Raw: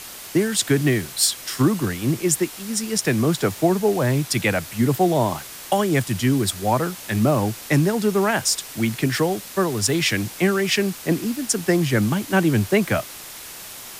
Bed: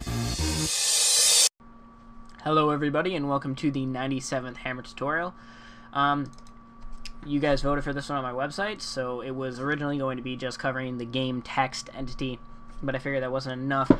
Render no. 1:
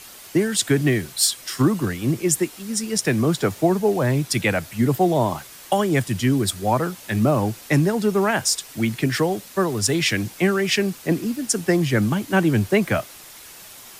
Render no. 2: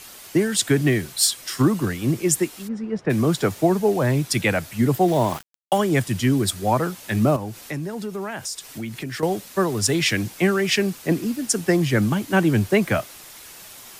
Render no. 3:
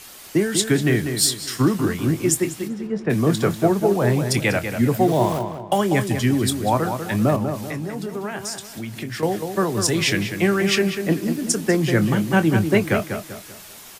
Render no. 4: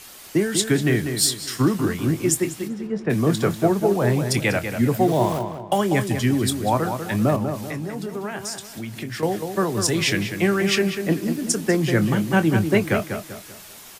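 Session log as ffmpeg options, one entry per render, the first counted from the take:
-af "afftdn=nr=6:nf=-38"
-filter_complex "[0:a]asplit=3[s0][s1][s2];[s0]afade=t=out:st=2.67:d=0.02[s3];[s1]lowpass=1300,afade=t=in:st=2.67:d=0.02,afade=t=out:st=3.09:d=0.02[s4];[s2]afade=t=in:st=3.09:d=0.02[s5];[s3][s4][s5]amix=inputs=3:normalize=0,asettb=1/sr,asplit=3[s6][s7][s8];[s6]atrim=end=5.084[s9];[s7]atrim=start=5.08:end=5.78,asetpts=PTS-STARTPTS,afade=t=in:d=0.004:c=qsin,afade=t=out:st=0.696:d=0.004:c=qsin,aeval=exprs='val(0)*gte(abs(val(0)),0.0299)':c=same[s10];[s8]atrim=start=5.776[s11];[s9][s10]acrossfade=d=0.004:c1=hsin:c2=qsin[s12];[s12][s11]acrossfade=d=0.004:c1=qsin:c2=hsin,asettb=1/sr,asplit=3[s13][s14][s15];[s13]atrim=end=7.364[s16];[s14]atrim=start=7.36:end=9.23,asetpts=PTS-STARTPTS,afade=t=in:d=0.004:c=qsin,afade=t=out:st=1.866:d=0.004:c=qsin,acompressor=threshold=0.0282:ratio=2.5:attack=3.2:release=140:knee=1:detection=peak[s17];[s15]atrim=start=9.226[s18];[s16][s17]acrossfade=d=0.004:c1=hsin:c2=qsin[s19];[s19][s18]acrossfade=d=0.004:c1=qsin:c2=hsin"
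-filter_complex "[0:a]asplit=2[s0][s1];[s1]adelay=25,volume=0.251[s2];[s0][s2]amix=inputs=2:normalize=0,asplit=2[s3][s4];[s4]adelay=194,lowpass=f=2600:p=1,volume=0.447,asplit=2[s5][s6];[s6]adelay=194,lowpass=f=2600:p=1,volume=0.39,asplit=2[s7][s8];[s8]adelay=194,lowpass=f=2600:p=1,volume=0.39,asplit=2[s9][s10];[s10]adelay=194,lowpass=f=2600:p=1,volume=0.39,asplit=2[s11][s12];[s12]adelay=194,lowpass=f=2600:p=1,volume=0.39[s13];[s3][s5][s7][s9][s11][s13]amix=inputs=6:normalize=0"
-af "volume=0.891"

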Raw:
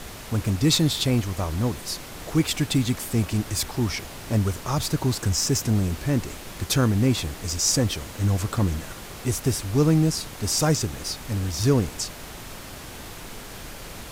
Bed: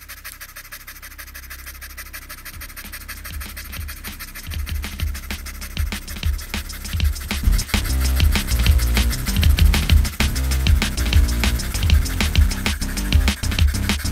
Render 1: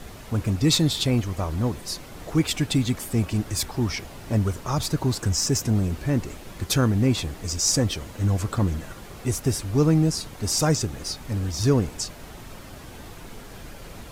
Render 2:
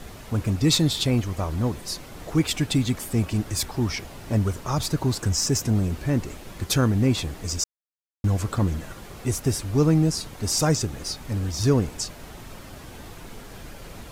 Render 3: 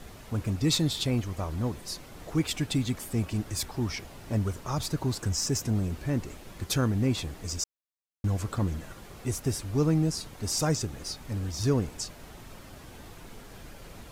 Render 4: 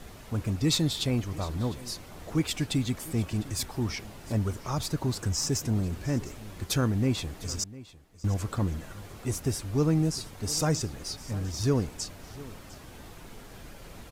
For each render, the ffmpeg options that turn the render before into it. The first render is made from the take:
-af "afftdn=nr=7:nf=-40"
-filter_complex "[0:a]asplit=3[s0][s1][s2];[s0]atrim=end=7.64,asetpts=PTS-STARTPTS,afade=t=out:st=7.636:d=0.004:c=hsin[s3];[s1]atrim=start=7.64:end=8.24,asetpts=PTS-STARTPTS,volume=0[s4];[s2]atrim=start=8.24,asetpts=PTS-STARTPTS,afade=t=in:d=0.004:c=hsin[s5];[s3][s4][s5]concat=n=3:v=0:a=1"
-af "volume=0.531"
-af "aecho=1:1:703:0.119"

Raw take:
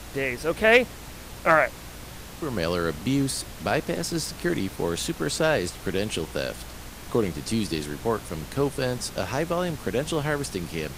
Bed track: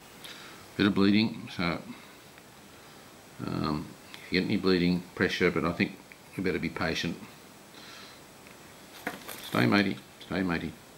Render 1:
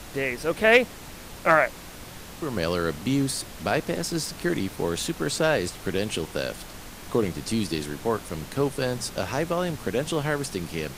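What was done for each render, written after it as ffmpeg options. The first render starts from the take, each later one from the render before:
-af "bandreject=f=60:t=h:w=4,bandreject=f=120:t=h:w=4"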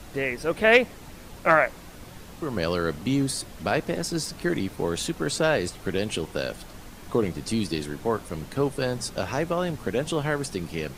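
-af "afftdn=nr=6:nf=-42"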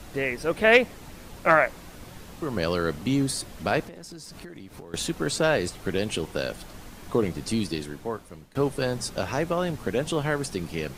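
-filter_complex "[0:a]asettb=1/sr,asplit=3[s0][s1][s2];[s0]atrim=end=3.834[s3];[s1]atrim=start=3.83:end=4.94,asetpts=PTS-STARTPTS,afade=t=in:d=0.004:c=qsin,afade=t=out:st=1.106:d=0.004:c=qsin,acompressor=threshold=0.0126:ratio=12:attack=3.2:release=140:knee=1:detection=peak[s4];[s2]atrim=start=4.936[s5];[s3][s4]acrossfade=d=0.004:c1=hsin:c2=qsin[s6];[s6][s5]acrossfade=d=0.004:c1=qsin:c2=hsin,asplit=2[s7][s8];[s7]atrim=end=8.55,asetpts=PTS-STARTPTS,afade=t=out:st=7.54:d=1.01:silence=0.112202[s9];[s8]atrim=start=8.55,asetpts=PTS-STARTPTS,afade=t=in:d=0.004:c=hsin:silence=0.112202[s10];[s9][s10]concat=n=2:v=0:a=1"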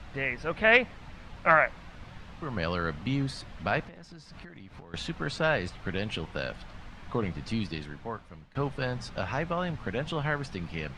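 -af "lowpass=3100,equalizer=f=370:w=1:g=-10"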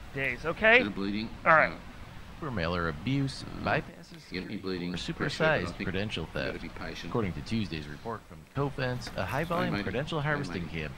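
-filter_complex "[1:a]volume=0.335[s0];[0:a][s0]amix=inputs=2:normalize=0"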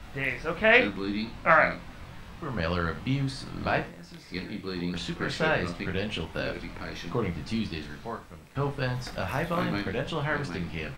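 -filter_complex "[0:a]asplit=2[s0][s1];[s1]adelay=23,volume=0.562[s2];[s0][s2]amix=inputs=2:normalize=0,aecho=1:1:70:0.2"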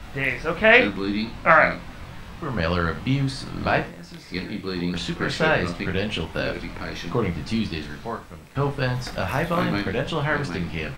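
-af "volume=1.88,alimiter=limit=0.794:level=0:latency=1"

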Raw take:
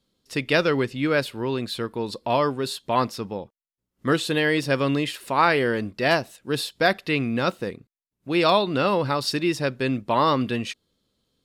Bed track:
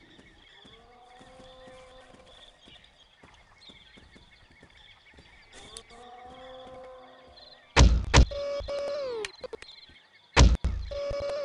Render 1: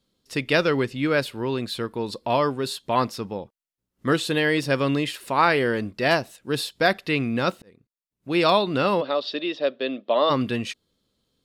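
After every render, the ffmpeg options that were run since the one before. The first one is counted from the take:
-filter_complex "[0:a]asplit=3[s0][s1][s2];[s0]afade=t=out:st=9:d=0.02[s3];[s1]highpass=f=280:w=0.5412,highpass=f=280:w=1.3066,equalizer=f=340:t=q:w=4:g=-5,equalizer=f=610:t=q:w=4:g=8,equalizer=f=910:t=q:w=4:g=-9,equalizer=f=1500:t=q:w=4:g=-7,equalizer=f=2200:t=q:w=4:g=-7,equalizer=f=3500:t=q:w=4:g=8,lowpass=f=3700:w=0.5412,lowpass=f=3700:w=1.3066,afade=t=in:st=9:d=0.02,afade=t=out:st=10.29:d=0.02[s4];[s2]afade=t=in:st=10.29:d=0.02[s5];[s3][s4][s5]amix=inputs=3:normalize=0,asplit=2[s6][s7];[s6]atrim=end=7.62,asetpts=PTS-STARTPTS,afade=t=out:st=7.616:d=0.004:c=hsin[s8];[s7]atrim=start=7.62,asetpts=PTS-STARTPTS,afade=t=in:d=0.73[s9];[s8][s9]concat=n=2:v=0:a=1"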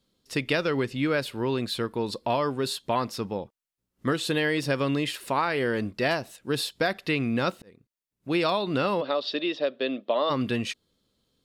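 -af "acompressor=threshold=0.0891:ratio=10"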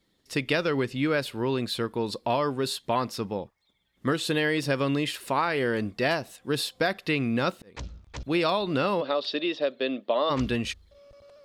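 -filter_complex "[1:a]volume=0.0944[s0];[0:a][s0]amix=inputs=2:normalize=0"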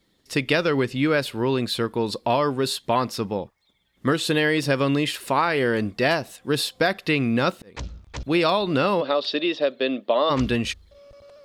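-af "volume=1.68"

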